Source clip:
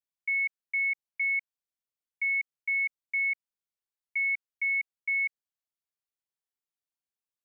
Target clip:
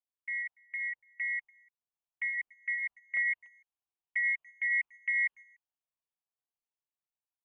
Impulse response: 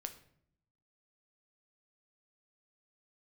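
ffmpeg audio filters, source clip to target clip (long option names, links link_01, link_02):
-filter_complex "[0:a]acontrast=71,asetnsamples=nb_out_samples=441:pad=0,asendcmd='3.17 highshelf g -4.5',highshelf=frequency=2100:gain=-11,dynaudnorm=framelen=300:gausssize=9:maxgain=3dB,asplit=2[link_01][link_02];[link_02]adelay=290,highpass=300,lowpass=3400,asoftclip=type=hard:threshold=-25dB,volume=-18dB[link_03];[link_01][link_03]amix=inputs=2:normalize=0,agate=range=-9dB:threshold=-39dB:ratio=16:detection=peak,firequalizer=gain_entry='entry(720,0);entry(1000,12);entry(1500,0);entry(2100,-3);entry(3100,7);entry(4400,-20)':delay=0.05:min_phase=1,aeval=exprs='val(0)*sin(2*PI*120*n/s)':channel_layout=same,afreqshift=-160,flanger=delay=0.3:depth=2.5:regen=-43:speed=0.39:shape=triangular"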